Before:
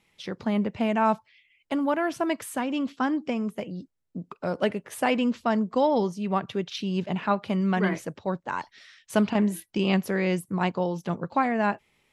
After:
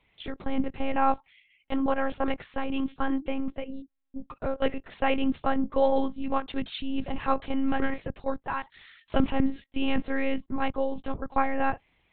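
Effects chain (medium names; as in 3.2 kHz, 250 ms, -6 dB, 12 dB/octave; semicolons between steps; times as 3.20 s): monotone LPC vocoder at 8 kHz 270 Hz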